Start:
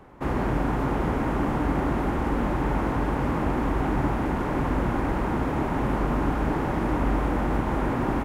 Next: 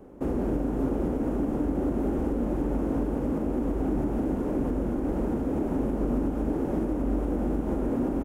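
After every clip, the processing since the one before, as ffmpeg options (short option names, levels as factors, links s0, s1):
-filter_complex "[0:a]equalizer=f=125:t=o:w=1:g=-6,equalizer=f=250:t=o:w=1:g=6,equalizer=f=500:t=o:w=1:g=5,equalizer=f=1000:t=o:w=1:g=-9,equalizer=f=2000:t=o:w=1:g=-10,equalizer=f=4000:t=o:w=1:g=-8,alimiter=limit=0.112:level=0:latency=1:release=235,asplit=2[s0][s1];[s1]adelay=41,volume=0.266[s2];[s0][s2]amix=inputs=2:normalize=0"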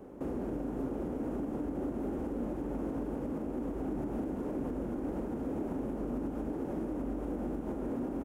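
-af "lowshelf=f=73:g=-8,alimiter=level_in=1.5:limit=0.0631:level=0:latency=1:release=399,volume=0.668"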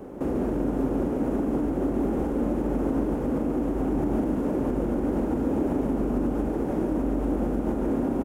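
-af "aecho=1:1:144:0.501,volume=2.82"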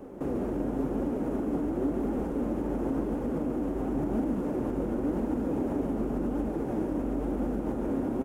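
-af "flanger=delay=3.2:depth=8.1:regen=63:speed=0.94:shape=triangular"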